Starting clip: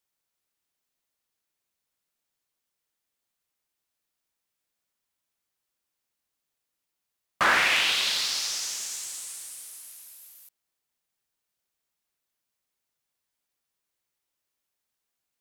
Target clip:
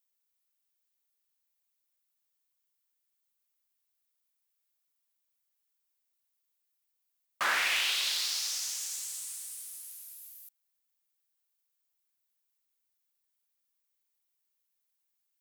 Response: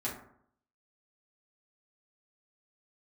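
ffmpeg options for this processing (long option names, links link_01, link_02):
-af "lowpass=frequency=3900:poles=1,aemphasis=mode=production:type=riaa,volume=-8.5dB"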